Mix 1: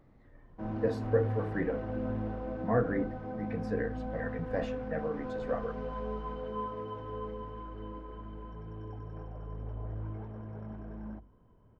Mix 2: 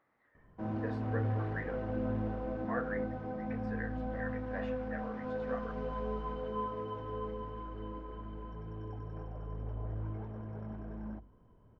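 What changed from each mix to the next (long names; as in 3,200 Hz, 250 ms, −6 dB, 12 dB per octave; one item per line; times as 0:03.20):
speech: add resonant band-pass 1,600 Hz, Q 1.3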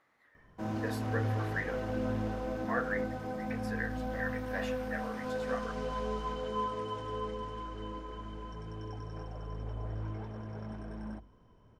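master: remove head-to-tape spacing loss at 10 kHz 35 dB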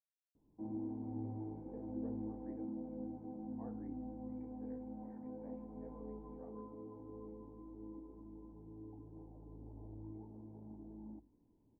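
speech: entry +0.90 s
master: add formant resonators in series u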